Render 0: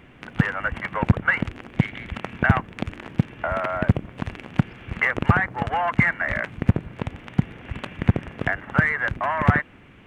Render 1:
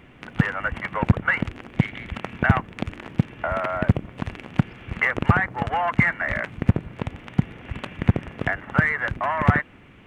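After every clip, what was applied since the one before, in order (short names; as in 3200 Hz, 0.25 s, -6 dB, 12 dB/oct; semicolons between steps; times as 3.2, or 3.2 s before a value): notch 1600 Hz, Q 28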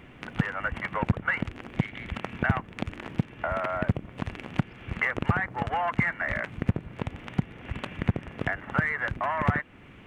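compressor 1.5:1, threshold -32 dBFS, peak gain reduction 8 dB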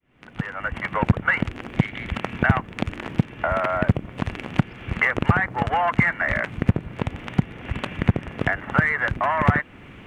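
opening faded in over 1.06 s; gain +6.5 dB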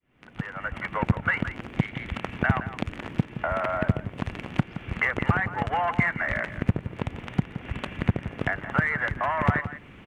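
outdoor echo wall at 29 m, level -12 dB; gain -4.5 dB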